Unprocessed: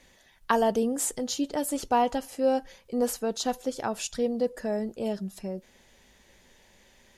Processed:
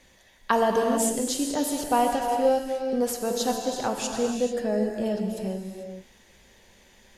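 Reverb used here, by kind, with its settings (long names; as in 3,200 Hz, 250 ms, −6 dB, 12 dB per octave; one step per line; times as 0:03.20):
reverb whose tail is shaped and stops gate 470 ms flat, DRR 2 dB
level +1 dB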